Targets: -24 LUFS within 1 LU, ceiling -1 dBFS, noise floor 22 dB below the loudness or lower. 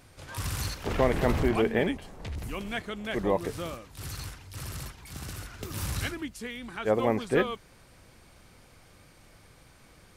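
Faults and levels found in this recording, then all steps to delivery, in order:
loudness -31.0 LUFS; peak level -10.5 dBFS; loudness target -24.0 LUFS
-> trim +7 dB

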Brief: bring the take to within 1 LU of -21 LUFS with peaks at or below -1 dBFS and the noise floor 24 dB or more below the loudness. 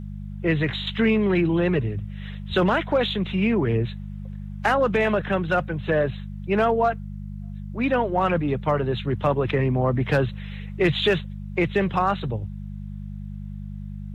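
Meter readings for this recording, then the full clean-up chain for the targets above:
hum 50 Hz; highest harmonic 200 Hz; hum level -32 dBFS; loudness -23.5 LUFS; peak level -8.0 dBFS; loudness target -21.0 LUFS
-> de-hum 50 Hz, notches 4; trim +2.5 dB

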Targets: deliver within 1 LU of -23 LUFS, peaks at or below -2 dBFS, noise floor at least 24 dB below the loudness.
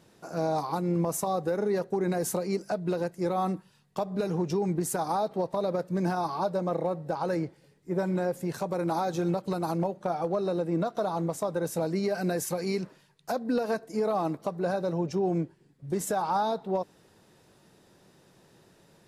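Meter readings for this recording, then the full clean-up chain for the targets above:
loudness -30.0 LUFS; peak level -18.5 dBFS; loudness target -23.0 LUFS
-> trim +7 dB

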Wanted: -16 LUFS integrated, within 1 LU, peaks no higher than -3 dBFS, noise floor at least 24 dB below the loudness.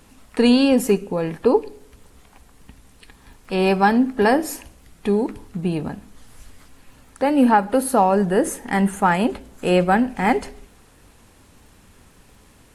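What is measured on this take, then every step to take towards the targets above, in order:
tick rate 44 per s; loudness -19.5 LUFS; peak level -4.5 dBFS; loudness target -16.0 LUFS
-> de-click; trim +3.5 dB; peak limiter -3 dBFS

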